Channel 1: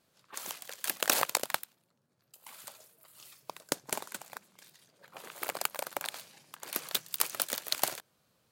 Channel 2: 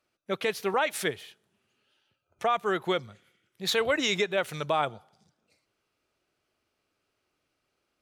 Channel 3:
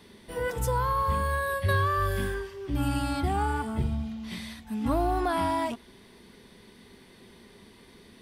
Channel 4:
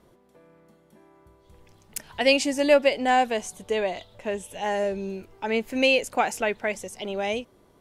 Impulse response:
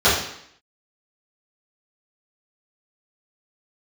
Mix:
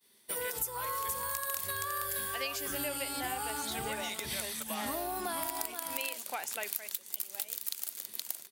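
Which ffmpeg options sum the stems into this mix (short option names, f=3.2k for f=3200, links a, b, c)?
-filter_complex "[0:a]highshelf=f=7.1k:g=9.5,adynamicequalizer=threshold=0.00631:dfrequency=1900:dqfactor=0.7:tfrequency=1900:tqfactor=0.7:attack=5:release=100:ratio=0.375:range=2.5:mode=boostabove:tftype=highshelf,volume=0.5dB,asplit=2[a][b];[b]volume=-12.5dB[c];[1:a]volume=-8dB,asplit=2[d][e];[2:a]aemphasis=mode=production:type=riaa,volume=-1dB,asplit=2[f][g];[g]volume=-5.5dB[h];[3:a]adelay=150,volume=-3.5dB[i];[e]apad=whole_len=375594[j];[a][j]sidechaincompress=threshold=-53dB:ratio=8:attack=16:release=401[k];[k][d][i]amix=inputs=3:normalize=0,highpass=f=1.3k:p=1,alimiter=limit=-4.5dB:level=0:latency=1:release=412,volume=0dB[l];[c][h]amix=inputs=2:normalize=0,aecho=0:1:471:1[m];[f][l][m]amix=inputs=3:normalize=0,agate=range=-33dB:threshold=-40dB:ratio=3:detection=peak,highshelf=f=6.5k:g=4.5,acompressor=threshold=-33dB:ratio=6"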